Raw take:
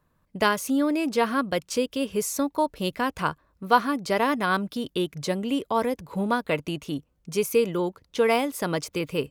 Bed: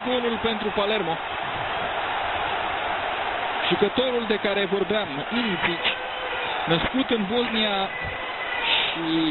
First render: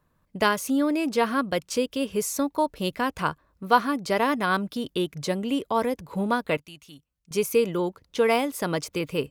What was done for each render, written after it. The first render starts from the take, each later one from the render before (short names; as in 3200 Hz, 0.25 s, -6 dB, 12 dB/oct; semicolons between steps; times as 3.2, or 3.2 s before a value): 6.57–7.31 passive tone stack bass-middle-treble 5-5-5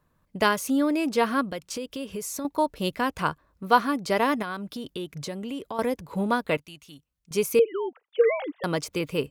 1.48–2.45 compressor 4:1, threshold -30 dBFS; 4.42–5.79 compressor 3:1, threshold -32 dBFS; 7.59–8.64 sine-wave speech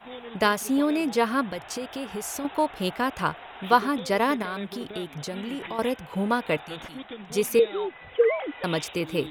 add bed -16.5 dB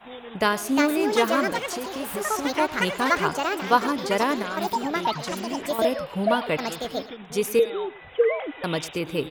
echoes that change speed 0.478 s, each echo +6 st, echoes 2; echo 0.106 s -17.5 dB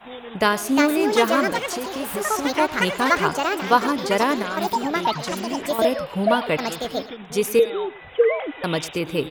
gain +3 dB; limiter -2 dBFS, peak gain reduction 1 dB